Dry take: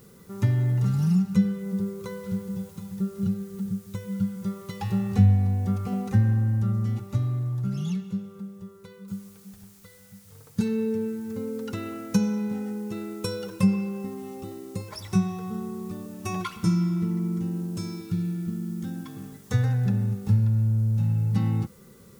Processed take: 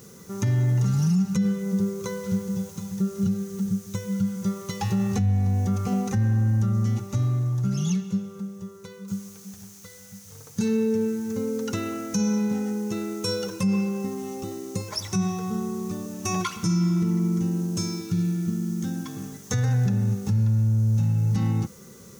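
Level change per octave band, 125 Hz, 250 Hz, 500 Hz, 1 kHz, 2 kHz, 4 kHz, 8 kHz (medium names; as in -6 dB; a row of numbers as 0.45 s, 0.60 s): +1.0 dB, +2.0 dB, +3.5 dB, +3.5 dB, +3.0 dB, +7.0 dB, +10.0 dB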